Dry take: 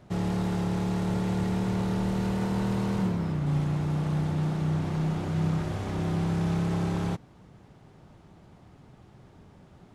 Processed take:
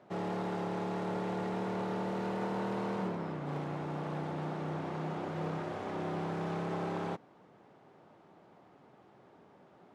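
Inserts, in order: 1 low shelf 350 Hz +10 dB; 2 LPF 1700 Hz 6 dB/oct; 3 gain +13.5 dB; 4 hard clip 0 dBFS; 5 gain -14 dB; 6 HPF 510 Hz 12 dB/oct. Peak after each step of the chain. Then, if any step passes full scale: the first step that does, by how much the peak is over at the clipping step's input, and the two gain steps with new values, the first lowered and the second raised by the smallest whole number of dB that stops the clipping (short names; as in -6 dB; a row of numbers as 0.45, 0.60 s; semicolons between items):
-9.5, -9.5, +4.0, 0.0, -14.0, -23.0 dBFS; step 3, 4.0 dB; step 3 +9.5 dB, step 5 -10 dB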